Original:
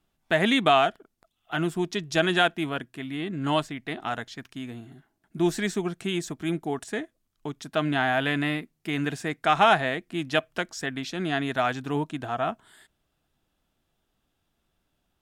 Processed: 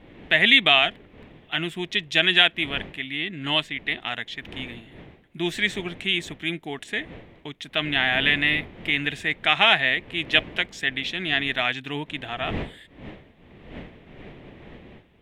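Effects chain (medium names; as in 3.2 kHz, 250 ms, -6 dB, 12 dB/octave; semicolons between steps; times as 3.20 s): wind noise 380 Hz -39 dBFS; high-order bell 2.6 kHz +15 dB 1.3 oct; trim -4 dB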